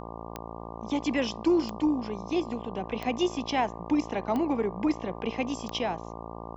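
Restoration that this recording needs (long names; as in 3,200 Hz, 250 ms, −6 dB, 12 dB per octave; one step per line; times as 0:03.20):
click removal
hum removal 56.7 Hz, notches 21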